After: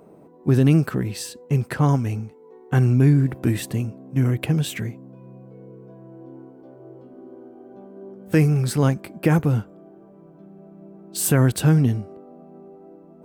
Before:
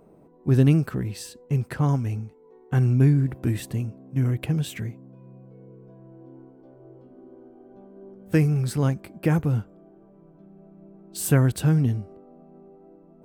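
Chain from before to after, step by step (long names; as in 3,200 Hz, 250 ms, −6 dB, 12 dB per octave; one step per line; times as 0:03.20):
high-pass filter 140 Hz 6 dB per octave
boost into a limiter +12.5 dB
level −6.5 dB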